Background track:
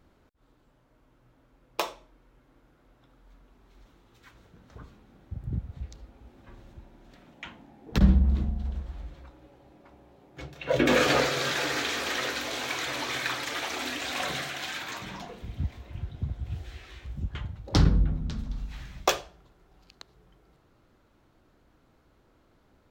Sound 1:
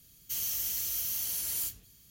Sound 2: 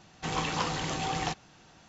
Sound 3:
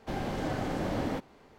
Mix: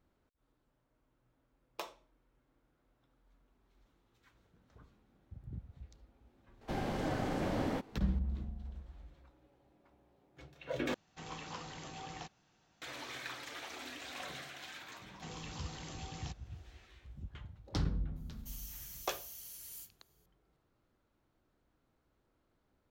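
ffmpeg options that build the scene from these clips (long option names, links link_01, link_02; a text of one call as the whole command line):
ffmpeg -i bed.wav -i cue0.wav -i cue1.wav -i cue2.wav -filter_complex "[2:a]asplit=2[link_01][link_02];[0:a]volume=-13.5dB[link_03];[link_02]acrossover=split=340|3000[link_04][link_05][link_06];[link_05]acompressor=threshold=-37dB:ratio=6:attack=3.2:release=140:knee=2.83:detection=peak[link_07];[link_04][link_07][link_06]amix=inputs=3:normalize=0[link_08];[link_03]asplit=2[link_09][link_10];[link_09]atrim=end=10.944[link_11];[link_01]atrim=end=1.88,asetpts=PTS-STARTPTS,volume=-15dB[link_12];[link_10]atrim=start=12.816[link_13];[3:a]atrim=end=1.58,asetpts=PTS-STARTPTS,volume=-3dB,afade=type=in:duration=0.004:curve=hsin,afade=type=out:start_time=1.576:duration=0.004:curve=hsin,adelay=6610[link_14];[link_08]atrim=end=1.88,asetpts=PTS-STARTPTS,volume=-12.5dB,afade=type=in:duration=0.004:curve=hsin,afade=type=out:start_time=1.876:duration=0.004:curve=hsin,adelay=14990[link_15];[1:a]atrim=end=2.1,asetpts=PTS-STARTPTS,volume=-16dB,afade=type=in:duration=0.004:curve=hsin,afade=type=out:start_time=2.096:duration=0.004:curve=hsin,adelay=18160[link_16];[link_11][link_12]acrossfade=duration=0.004:curve1=hsin:curve2=hsin[link_17];[link_17][link_13]acrossfade=duration=0.004:curve1=hsin:curve2=hsin[link_18];[link_18][link_14][link_15][link_16]amix=inputs=4:normalize=0" out.wav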